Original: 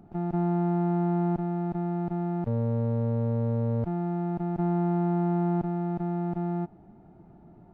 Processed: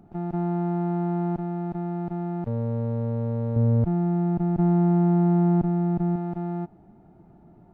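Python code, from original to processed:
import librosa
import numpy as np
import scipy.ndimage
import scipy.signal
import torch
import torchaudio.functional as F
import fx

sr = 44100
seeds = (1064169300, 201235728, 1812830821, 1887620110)

y = fx.low_shelf(x, sr, hz=300.0, db=9.0, at=(3.56, 6.16))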